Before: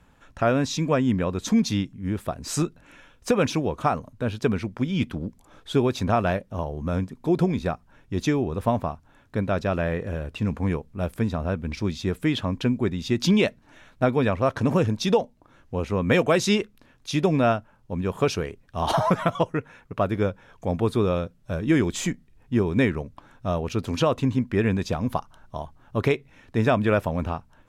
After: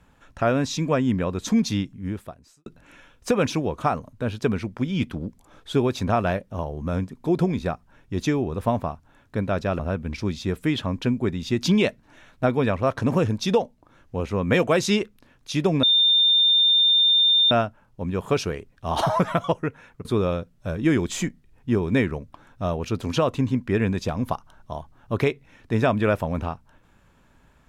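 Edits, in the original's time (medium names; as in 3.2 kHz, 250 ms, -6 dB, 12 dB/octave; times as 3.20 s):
2.03–2.66 s: fade out quadratic
9.79–11.38 s: delete
17.42 s: add tone 3.61 kHz -14.5 dBFS 1.68 s
19.96–20.89 s: delete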